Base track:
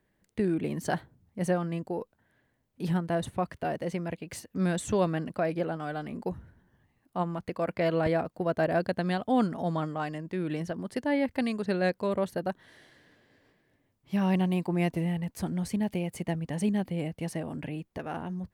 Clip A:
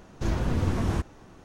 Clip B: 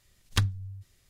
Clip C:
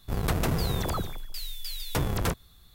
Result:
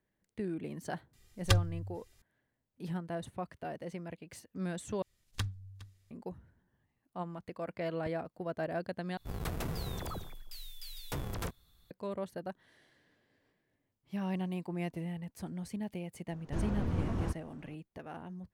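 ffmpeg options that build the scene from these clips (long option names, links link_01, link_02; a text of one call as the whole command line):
ffmpeg -i bed.wav -i cue0.wav -i cue1.wav -i cue2.wav -filter_complex "[2:a]asplit=2[link_01][link_02];[0:a]volume=-9.5dB[link_03];[link_01]aecho=1:1:2.5:0.69[link_04];[link_02]aecho=1:1:412:0.106[link_05];[1:a]highshelf=frequency=2800:gain=-10.5[link_06];[link_03]asplit=3[link_07][link_08][link_09];[link_07]atrim=end=5.024[link_10];[link_05]atrim=end=1.09,asetpts=PTS-STARTPTS,volume=-10.5dB[link_11];[link_08]atrim=start=6.106:end=9.174[link_12];[3:a]atrim=end=2.74,asetpts=PTS-STARTPTS,volume=-10.5dB[link_13];[link_09]atrim=start=11.906[link_14];[link_04]atrim=end=1.09,asetpts=PTS-STARTPTS,volume=-3dB,afade=type=in:duration=0.004:curve=hsin,afade=type=out:start_time=1.086:duration=0.004:curve=hsin,adelay=1130[link_15];[link_06]atrim=end=1.44,asetpts=PTS-STARTPTS,volume=-7.5dB,afade=type=in:duration=0.004:curve=hsin,afade=type=out:start_time=1.436:duration=0.004:curve=hsin,adelay=16310[link_16];[link_10][link_11]acrossfade=duration=0.004:curve1=hsin:curve2=hsin[link_17];[link_17][link_12]acrossfade=duration=0.004:curve1=hsin:curve2=hsin[link_18];[link_18][link_13]acrossfade=duration=0.004:curve1=hsin:curve2=hsin[link_19];[link_19][link_14]acrossfade=duration=0.004:curve1=hsin:curve2=hsin[link_20];[link_20][link_15][link_16]amix=inputs=3:normalize=0" out.wav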